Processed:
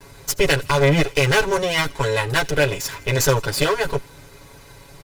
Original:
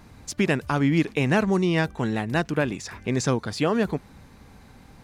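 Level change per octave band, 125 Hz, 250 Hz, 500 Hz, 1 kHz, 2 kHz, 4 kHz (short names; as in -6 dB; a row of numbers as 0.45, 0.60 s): +4.0, -4.0, +6.5, +6.0, +8.0, +11.5 dB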